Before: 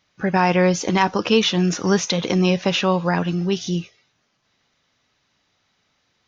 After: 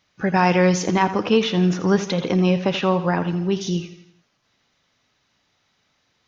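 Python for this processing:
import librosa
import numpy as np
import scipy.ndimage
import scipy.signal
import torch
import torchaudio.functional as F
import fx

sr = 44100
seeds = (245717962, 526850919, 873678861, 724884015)

y = fx.lowpass(x, sr, hz=2000.0, slope=6, at=(0.85, 3.61))
y = fx.echo_feedback(y, sr, ms=83, feedback_pct=49, wet_db=-13)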